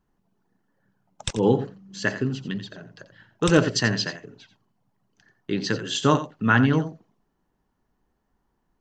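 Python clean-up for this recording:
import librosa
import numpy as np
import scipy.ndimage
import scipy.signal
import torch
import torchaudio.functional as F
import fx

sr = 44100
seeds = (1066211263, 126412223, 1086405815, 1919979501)

y = fx.fix_echo_inverse(x, sr, delay_ms=87, level_db=-12.5)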